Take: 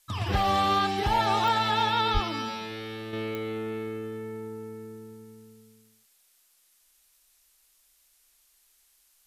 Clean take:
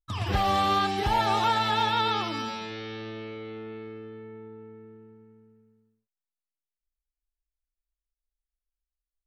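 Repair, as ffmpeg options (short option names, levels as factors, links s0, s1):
-filter_complex "[0:a]adeclick=t=4,asplit=3[s0][s1][s2];[s0]afade=t=out:st=2.13:d=0.02[s3];[s1]highpass=f=140:w=0.5412,highpass=f=140:w=1.3066,afade=t=in:st=2.13:d=0.02,afade=t=out:st=2.25:d=0.02[s4];[s2]afade=t=in:st=2.25:d=0.02[s5];[s3][s4][s5]amix=inputs=3:normalize=0,agate=range=0.0891:threshold=0.00141,asetnsamples=n=441:p=0,asendcmd='3.13 volume volume -6dB',volume=1"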